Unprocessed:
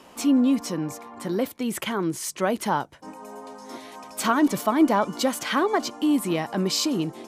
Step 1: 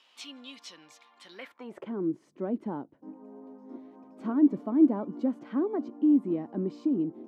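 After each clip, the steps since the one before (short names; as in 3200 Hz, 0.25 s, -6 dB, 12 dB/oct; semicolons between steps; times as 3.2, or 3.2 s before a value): band-pass sweep 3500 Hz -> 280 Hz, 1.3–1.93; high shelf 4600 Hz -6 dB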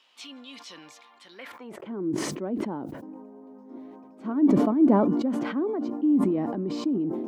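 sustainer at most 30 dB/s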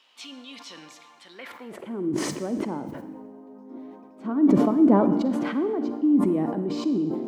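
reverb RT60 1.2 s, pre-delay 39 ms, DRR 10.5 dB; gain +1.5 dB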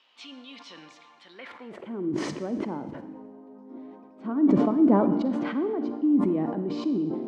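LPF 4600 Hz 12 dB/oct; gain -2 dB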